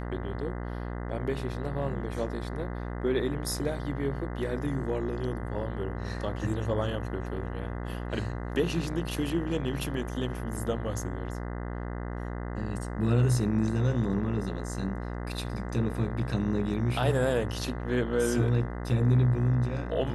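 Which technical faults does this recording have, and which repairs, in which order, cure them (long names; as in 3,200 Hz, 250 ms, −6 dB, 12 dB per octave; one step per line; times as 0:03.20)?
mains buzz 60 Hz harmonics 34 −35 dBFS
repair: hum removal 60 Hz, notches 34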